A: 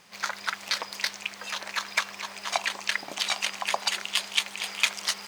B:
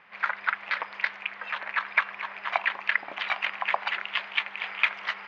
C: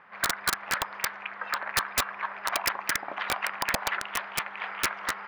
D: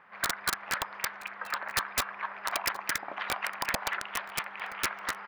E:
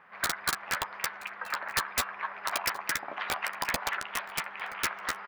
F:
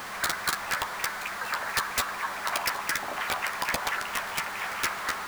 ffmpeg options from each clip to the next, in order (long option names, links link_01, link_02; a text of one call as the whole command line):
ffmpeg -i in.wav -af "lowpass=frequency=2200:width=0.5412,lowpass=frequency=2200:width=1.3066,tiltshelf=frequency=730:gain=-8.5" out.wav
ffmpeg -i in.wav -af "highshelf=frequency=1900:width_type=q:width=1.5:gain=-7,aeval=exprs='(mod(8.91*val(0)+1,2)-1)/8.91':channel_layout=same,volume=2.5dB" out.wav
ffmpeg -i in.wav -af "aecho=1:1:975:0.0794,volume=-3dB" out.wav
ffmpeg -i in.wav -filter_complex "[0:a]asplit=2[link_01][link_02];[link_02]adelay=12,volume=-9dB[link_03];[link_01][link_03]amix=inputs=2:normalize=0" out.wav
ffmpeg -i in.wav -af "aeval=exprs='val(0)+0.5*0.0224*sgn(val(0))':channel_layout=same" out.wav